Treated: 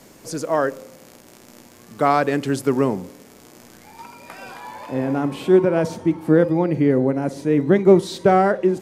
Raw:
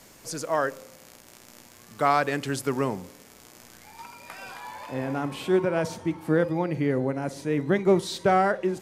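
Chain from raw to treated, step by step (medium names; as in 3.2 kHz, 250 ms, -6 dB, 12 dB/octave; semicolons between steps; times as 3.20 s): peaking EQ 290 Hz +8 dB 2.6 oct; trim +1 dB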